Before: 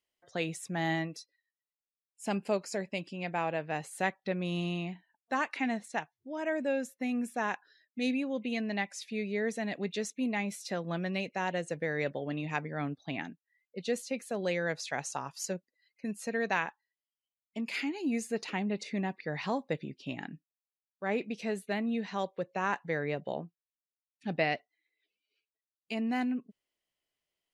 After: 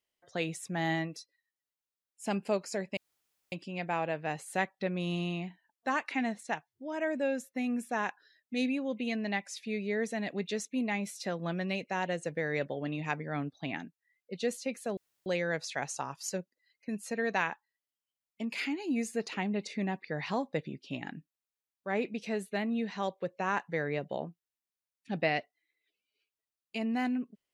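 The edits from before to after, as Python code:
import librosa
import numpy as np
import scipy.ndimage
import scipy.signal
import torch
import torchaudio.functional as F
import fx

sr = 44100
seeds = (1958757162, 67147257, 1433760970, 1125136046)

y = fx.edit(x, sr, fx.insert_room_tone(at_s=2.97, length_s=0.55),
    fx.insert_room_tone(at_s=14.42, length_s=0.29), tone=tone)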